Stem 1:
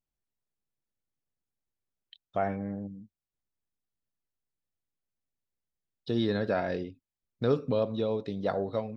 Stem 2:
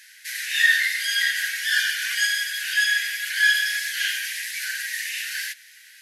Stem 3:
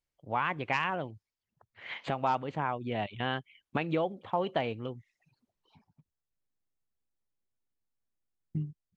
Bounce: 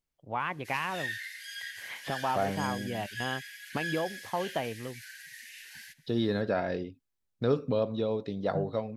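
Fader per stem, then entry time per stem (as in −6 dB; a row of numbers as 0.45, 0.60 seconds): −0.5, −18.5, −2.0 decibels; 0.00, 0.40, 0.00 seconds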